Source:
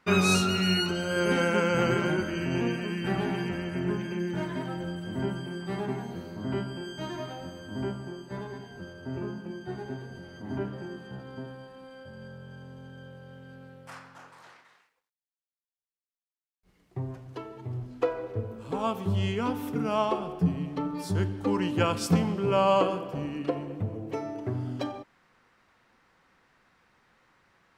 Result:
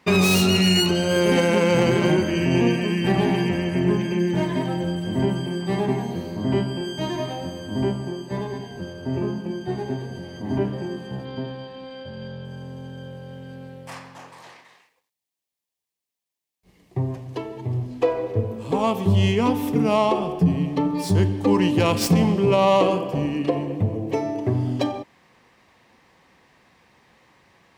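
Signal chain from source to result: tracing distortion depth 0.095 ms; high-pass 50 Hz; peaking EQ 1.4 kHz -13.5 dB 0.29 oct; 11.25–12.45 s: resonant low-pass 4 kHz, resonance Q 1.9; loudness maximiser +17.5 dB; trim -8 dB

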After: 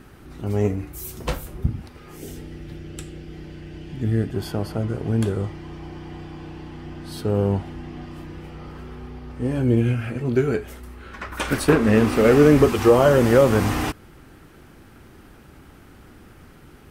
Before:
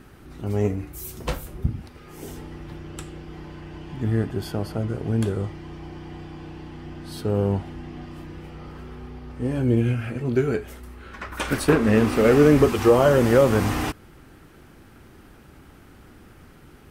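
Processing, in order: 2.17–4.34 s: peaking EQ 1 kHz -12.5 dB 0.81 oct; trim +1.5 dB

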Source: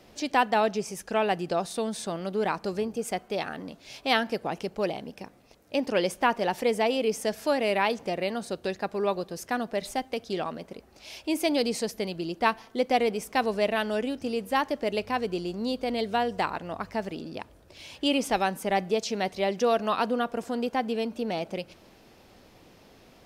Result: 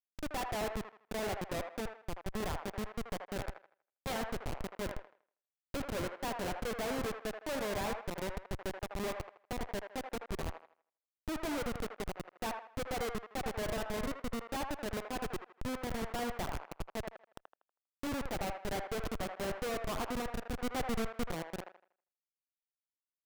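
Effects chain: Schmitt trigger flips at -25 dBFS; 20.64–21.31 s: waveshaping leveller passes 2; feedback echo behind a band-pass 80 ms, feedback 32%, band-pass 1.1 kHz, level -3.5 dB; trim -6.5 dB

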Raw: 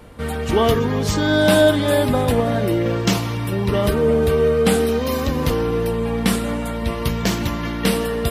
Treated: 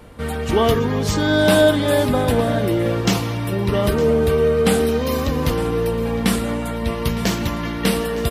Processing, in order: delay 910 ms -15.5 dB

